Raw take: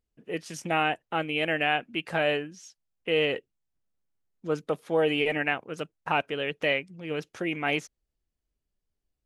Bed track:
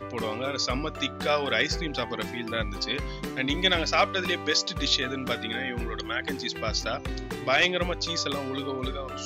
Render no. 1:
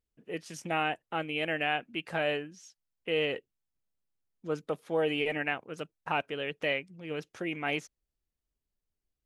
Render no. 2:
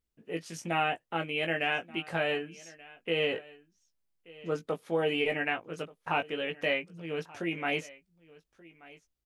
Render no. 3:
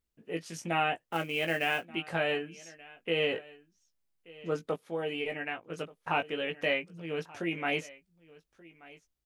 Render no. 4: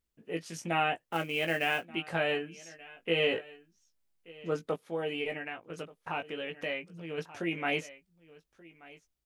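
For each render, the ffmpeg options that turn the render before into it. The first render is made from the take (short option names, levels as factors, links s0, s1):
-af "volume=0.596"
-filter_complex "[0:a]asplit=2[s0][s1];[s1]adelay=18,volume=0.531[s2];[s0][s2]amix=inputs=2:normalize=0,aecho=1:1:1181:0.0841"
-filter_complex "[0:a]asettb=1/sr,asplit=3[s0][s1][s2];[s0]atrim=end=1.004[s3];[s1]atrim=start=1:end=1.85,asetpts=PTS-STARTPTS,afade=t=in:d=0.004:c=qsin,afade=t=out:st=0.846:d=0.004:c=qsin,acrusher=bits=5:mode=log:mix=0:aa=0.000001[s4];[s2]atrim=start=1.846[s5];[s3][s4]acrossfade=d=0.004:c1=hsin:c2=qsin[s6];[s6][s5]acrossfade=d=0.004:c1=qsin:c2=hsin,asplit=3[s7][s8][s9];[s7]atrim=end=4.762[s10];[s8]atrim=start=4.758:end=5.702,asetpts=PTS-STARTPTS,volume=0.531[s11];[s9]atrim=start=5.698[s12];[s10][s11]acrossfade=d=0.004:c1=hsin:c2=hsin[s13];[s13][s12]acrossfade=d=0.004:c1=hsin:c2=hsin"
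-filter_complex "[0:a]asettb=1/sr,asplit=3[s0][s1][s2];[s0]atrim=end=2.694[s3];[s1]atrim=start=2.69:end=4.32,asetpts=PTS-STARTPTS,afade=t=in:d=0.004:c=qsin,afade=t=out:st=1.626:d=0.004:c=qsin,asplit=2[s4][s5];[s5]adelay=18,volume=0.376[s6];[s4][s6]amix=inputs=2:normalize=0,atrim=end_sample=71883[s7];[s2]atrim=start=4.316[s8];[s3][s7]acrossfade=d=0.004:c1=hsin:c2=qsin[s9];[s9][s8]acrossfade=d=0.004:c1=qsin:c2=hsin,asettb=1/sr,asplit=3[s10][s11][s12];[s10]atrim=end=5.384[s13];[s11]atrim=start=5.38:end=7.18,asetpts=PTS-STARTPTS,afade=t=in:d=0.004:c=qsin,afade=t=out:st=1.796:d=0.004:c=qsin,acompressor=threshold=0.01:ratio=1.5:attack=3.2:release=140:knee=1:detection=peak[s14];[s12]atrim=start=7.176[s15];[s13][s14]acrossfade=d=0.004:c1=hsin:c2=qsin[s16];[s16][s15]acrossfade=d=0.004:c1=qsin:c2=hsin"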